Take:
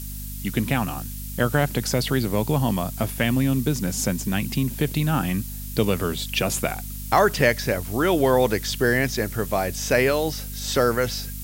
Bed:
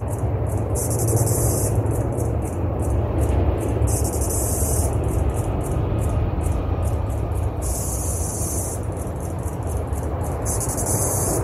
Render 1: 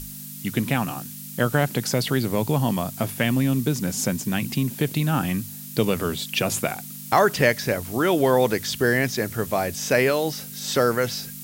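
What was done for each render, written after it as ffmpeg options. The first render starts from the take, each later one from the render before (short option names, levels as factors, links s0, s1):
-af "bandreject=f=50:t=h:w=6,bandreject=f=100:t=h:w=6"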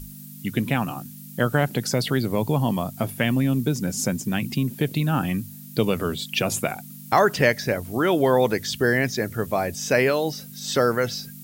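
-af "afftdn=nr=9:nf=-38"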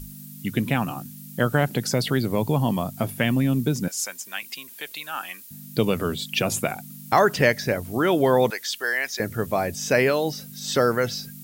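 -filter_complex "[0:a]asettb=1/sr,asplit=3[s0][s1][s2];[s0]atrim=end=3.884[s3];[s1]atrim=start=3.88:end=5.51,asetpts=PTS-STARTPTS,afade=t=in:d=0.004:c=qsin,afade=t=out:st=1.626:d=0.004:c=qsin,highpass=1100[s4];[s2]atrim=start=5.506[s5];[s3][s4]acrossfade=d=0.004:c1=hsin:c2=qsin[s6];[s6][s5]acrossfade=d=0.004:c1=qsin:c2=hsin,asettb=1/sr,asplit=3[s7][s8][s9];[s7]atrim=end=8.504[s10];[s8]atrim=start=8.5:end=9.2,asetpts=PTS-STARTPTS,afade=t=in:d=0.004:c=qsin,afade=t=out:st=0.696:d=0.004:c=qsin,highpass=880[s11];[s9]atrim=start=9.196[s12];[s10][s11]acrossfade=d=0.004:c1=hsin:c2=qsin[s13];[s13][s12]acrossfade=d=0.004:c1=qsin:c2=hsin"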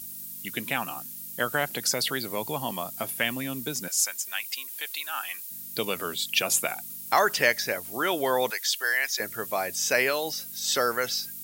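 -af "highpass=f=1000:p=1,highshelf=f=5500:g=6"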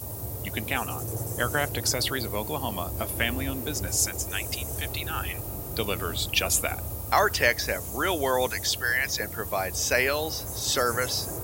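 -filter_complex "[1:a]volume=0.2[s0];[0:a][s0]amix=inputs=2:normalize=0"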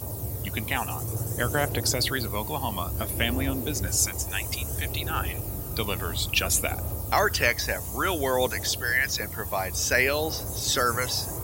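-af "aphaser=in_gain=1:out_gain=1:delay=1.2:decay=0.33:speed=0.58:type=triangular"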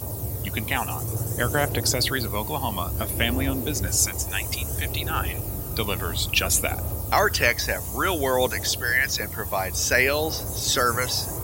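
-af "volume=1.33"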